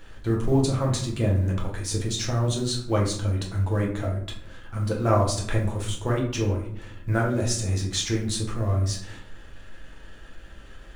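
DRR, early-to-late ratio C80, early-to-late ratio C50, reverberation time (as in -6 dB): -2.0 dB, 10.5 dB, 6.5 dB, 0.65 s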